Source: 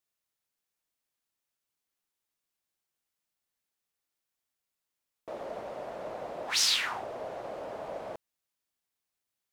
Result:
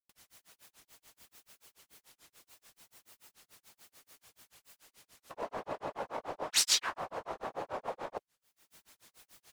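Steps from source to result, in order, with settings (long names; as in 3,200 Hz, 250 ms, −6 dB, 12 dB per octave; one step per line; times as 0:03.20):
upward compression, threshold −33 dBFS
random phases in short frames
pitch-shifted copies added −3 semitones −18 dB, +7 semitones −2 dB
granular cloud 134 ms, grains 6.9 per second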